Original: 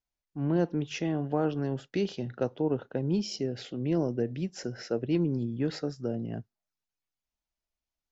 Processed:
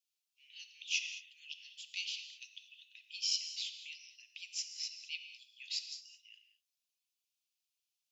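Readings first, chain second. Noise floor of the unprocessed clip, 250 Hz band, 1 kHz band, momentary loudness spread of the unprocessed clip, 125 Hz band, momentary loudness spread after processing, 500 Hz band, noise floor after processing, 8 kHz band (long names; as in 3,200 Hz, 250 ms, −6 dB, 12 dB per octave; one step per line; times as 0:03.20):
below −85 dBFS, below −40 dB, below −40 dB, 7 LU, below −40 dB, 18 LU, below −40 dB, below −85 dBFS, can't be measured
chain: Butterworth high-pass 2,400 Hz 72 dB per octave
reverb whose tail is shaped and stops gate 240 ms flat, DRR 7.5 dB
level +5 dB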